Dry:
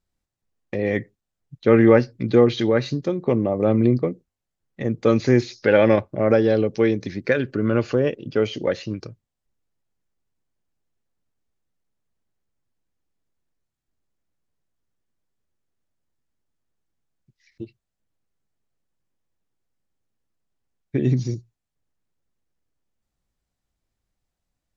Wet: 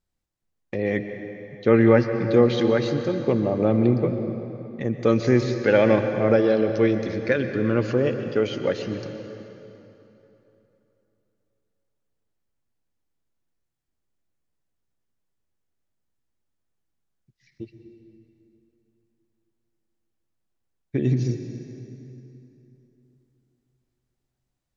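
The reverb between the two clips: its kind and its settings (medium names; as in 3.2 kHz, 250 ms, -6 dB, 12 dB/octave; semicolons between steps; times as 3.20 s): plate-style reverb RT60 3.2 s, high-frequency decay 0.75×, pre-delay 110 ms, DRR 7 dB; trim -2 dB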